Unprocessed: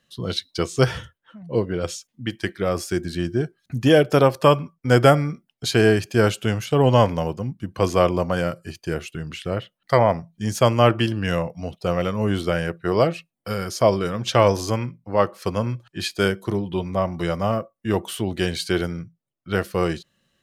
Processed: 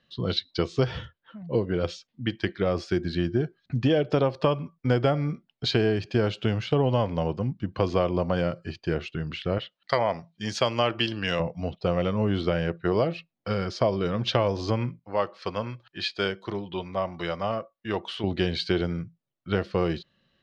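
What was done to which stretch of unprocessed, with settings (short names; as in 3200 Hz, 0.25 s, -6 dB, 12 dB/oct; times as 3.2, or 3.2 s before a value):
9.58–11.4 tilt +3 dB/oct
14.99–18.24 low shelf 460 Hz -11.5 dB
whole clip: Chebyshev low-pass 4300 Hz, order 3; dynamic EQ 1500 Hz, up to -4 dB, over -33 dBFS, Q 1.2; compressor 6:1, threshold -19 dBFS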